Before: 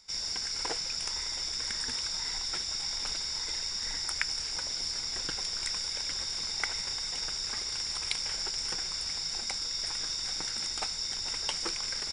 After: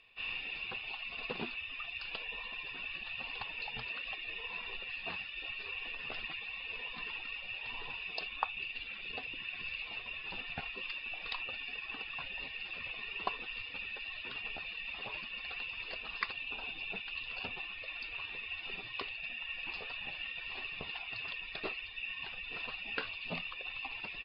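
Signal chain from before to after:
reverb reduction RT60 1.5 s
wrong playback speed 15 ips tape played at 7.5 ips
level −4.5 dB

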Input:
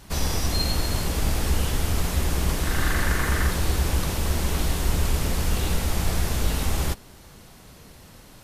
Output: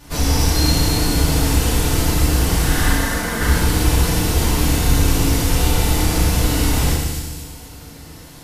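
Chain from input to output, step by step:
0:02.93–0:03.41: Chebyshev high-pass with heavy ripple 150 Hz, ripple 6 dB
delay with a high-pass on its return 249 ms, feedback 42%, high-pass 3,800 Hz, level −3.5 dB
feedback delay network reverb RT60 1.2 s, low-frequency decay 1.55×, high-frequency decay 0.95×, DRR −6.5 dB

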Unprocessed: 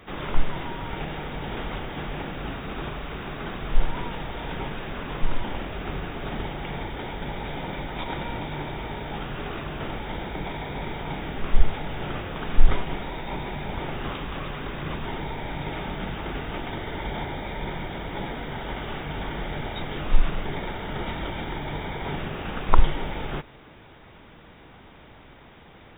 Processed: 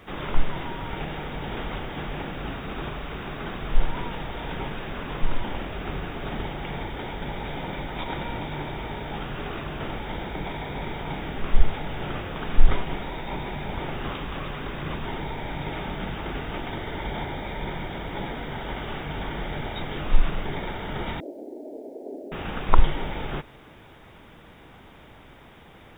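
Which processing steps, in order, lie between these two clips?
0:21.20–0:22.32: elliptic band-pass filter 260–640 Hz, stop band 40 dB
bit-depth reduction 12 bits, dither triangular

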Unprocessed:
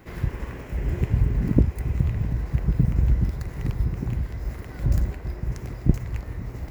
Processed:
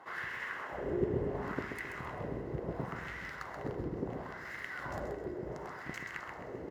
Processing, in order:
spectral tilt +2 dB per octave
notch filter 2,400 Hz, Q 5.7
hum removal 111.9 Hz, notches 35
in parallel at −11.5 dB: comparator with hysteresis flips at −28 dBFS
on the sum: auto-filter band-pass sine 0.71 Hz 370–2,000 Hz
repeating echo 131 ms, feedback 38%, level −7 dB
convolution reverb RT60 4.7 s, pre-delay 7 ms, DRR 14.5 dB
level +7.5 dB

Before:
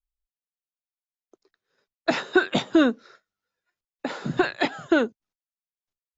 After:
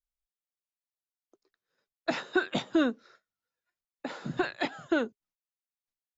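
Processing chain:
notch filter 410 Hz, Q 12
level −7 dB

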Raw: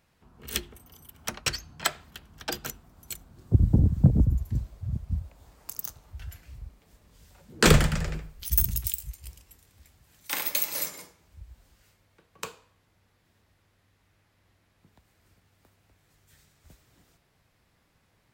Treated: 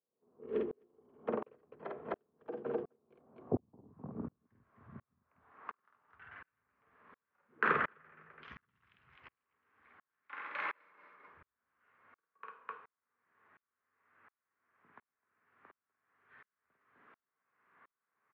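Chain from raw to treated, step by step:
low-shelf EQ 430 Hz +7 dB
downward compressor 2 to 1, threshold −28 dBFS, peak gain reduction 12.5 dB
loudspeaker in its box 120–2,600 Hz, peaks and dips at 240 Hz +6 dB, 420 Hz +8 dB, 1,100 Hz +8 dB
loudspeakers that aren't time-aligned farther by 17 metres −4 dB, 88 metres −8 dB
band-pass filter sweep 480 Hz → 1,500 Hz, 0:03.05–0:04.44
tremolo with a ramp in dB swelling 1.4 Hz, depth 39 dB
level +11 dB

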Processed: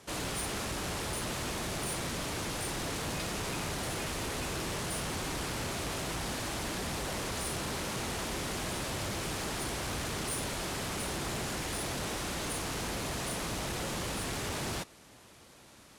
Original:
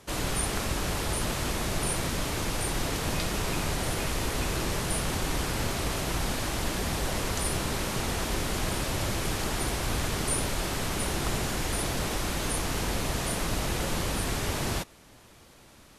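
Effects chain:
variable-slope delta modulation 64 kbit/s
high-pass filter 90 Hz 6 dB per octave
soft clipping −29 dBFS, distortion −13 dB
level −1.5 dB

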